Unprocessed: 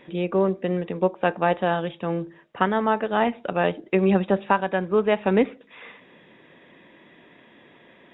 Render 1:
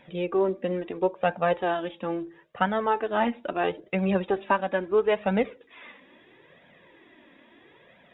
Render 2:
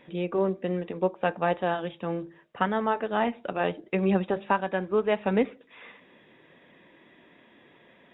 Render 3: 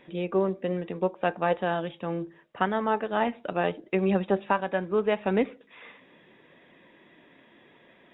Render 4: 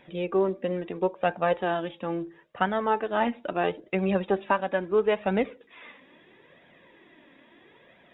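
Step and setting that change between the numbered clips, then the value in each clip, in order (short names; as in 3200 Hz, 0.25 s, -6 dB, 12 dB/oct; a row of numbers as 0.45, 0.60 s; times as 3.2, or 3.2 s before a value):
flange, regen: -4, -78, +82, +30%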